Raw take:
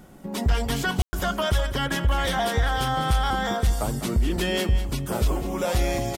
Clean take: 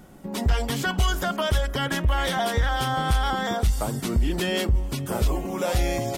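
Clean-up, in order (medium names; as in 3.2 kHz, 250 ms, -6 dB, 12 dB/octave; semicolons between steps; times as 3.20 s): room tone fill 1.02–1.13 s; inverse comb 201 ms -11.5 dB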